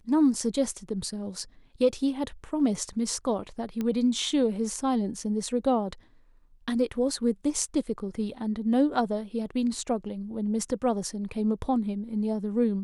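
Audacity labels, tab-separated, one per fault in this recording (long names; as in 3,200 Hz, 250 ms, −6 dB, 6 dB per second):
3.810000	3.810000	click −18 dBFS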